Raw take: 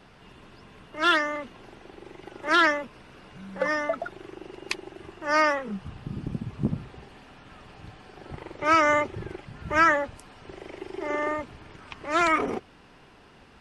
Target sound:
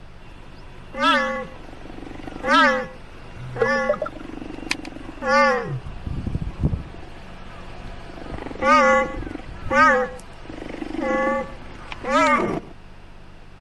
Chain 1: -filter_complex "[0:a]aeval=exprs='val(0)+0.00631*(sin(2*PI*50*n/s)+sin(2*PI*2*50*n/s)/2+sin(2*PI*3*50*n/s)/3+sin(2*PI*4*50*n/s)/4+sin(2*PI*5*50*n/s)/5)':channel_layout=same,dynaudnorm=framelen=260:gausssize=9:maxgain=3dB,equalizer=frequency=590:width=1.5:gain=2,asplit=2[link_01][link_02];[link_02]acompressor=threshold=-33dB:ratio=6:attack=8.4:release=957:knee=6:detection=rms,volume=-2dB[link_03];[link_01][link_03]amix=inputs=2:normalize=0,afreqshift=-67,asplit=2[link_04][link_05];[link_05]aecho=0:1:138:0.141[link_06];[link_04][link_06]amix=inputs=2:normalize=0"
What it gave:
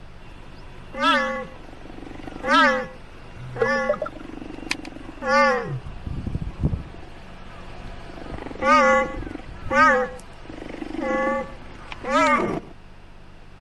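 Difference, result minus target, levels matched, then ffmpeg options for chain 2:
downward compressor: peak gain reduction +7.5 dB
-filter_complex "[0:a]aeval=exprs='val(0)+0.00631*(sin(2*PI*50*n/s)+sin(2*PI*2*50*n/s)/2+sin(2*PI*3*50*n/s)/3+sin(2*PI*4*50*n/s)/4+sin(2*PI*5*50*n/s)/5)':channel_layout=same,dynaudnorm=framelen=260:gausssize=9:maxgain=3dB,equalizer=frequency=590:width=1.5:gain=2,asplit=2[link_01][link_02];[link_02]acompressor=threshold=-24dB:ratio=6:attack=8.4:release=957:knee=6:detection=rms,volume=-2dB[link_03];[link_01][link_03]amix=inputs=2:normalize=0,afreqshift=-67,asplit=2[link_04][link_05];[link_05]aecho=0:1:138:0.141[link_06];[link_04][link_06]amix=inputs=2:normalize=0"

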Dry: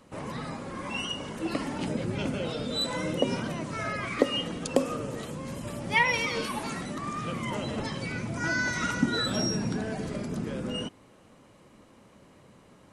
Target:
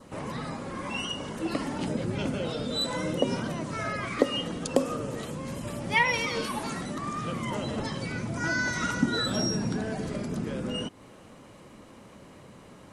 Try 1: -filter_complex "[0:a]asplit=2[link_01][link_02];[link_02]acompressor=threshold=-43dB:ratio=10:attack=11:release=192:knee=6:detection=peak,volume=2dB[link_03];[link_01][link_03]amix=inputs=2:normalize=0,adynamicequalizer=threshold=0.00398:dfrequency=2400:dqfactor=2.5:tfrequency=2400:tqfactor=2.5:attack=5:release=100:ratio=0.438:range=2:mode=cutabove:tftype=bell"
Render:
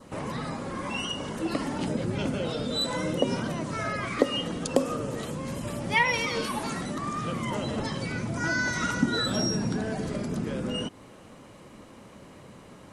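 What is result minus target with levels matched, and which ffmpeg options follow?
downward compressor: peak gain reduction −9 dB
-filter_complex "[0:a]asplit=2[link_01][link_02];[link_02]acompressor=threshold=-53dB:ratio=10:attack=11:release=192:knee=6:detection=peak,volume=2dB[link_03];[link_01][link_03]amix=inputs=2:normalize=0,adynamicequalizer=threshold=0.00398:dfrequency=2400:dqfactor=2.5:tfrequency=2400:tqfactor=2.5:attack=5:release=100:ratio=0.438:range=2:mode=cutabove:tftype=bell"

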